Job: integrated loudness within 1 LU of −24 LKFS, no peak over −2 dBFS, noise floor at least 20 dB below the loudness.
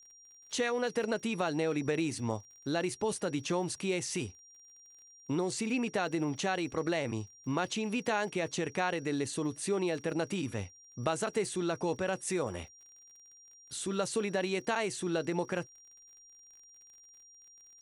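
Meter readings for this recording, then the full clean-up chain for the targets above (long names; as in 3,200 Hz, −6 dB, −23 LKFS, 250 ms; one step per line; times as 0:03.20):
crackle rate 42 per second; interfering tone 5,700 Hz; level of the tone −55 dBFS; integrated loudness −33.5 LKFS; sample peak −16.5 dBFS; target loudness −24.0 LKFS
→ click removal
notch filter 5,700 Hz, Q 30
level +9.5 dB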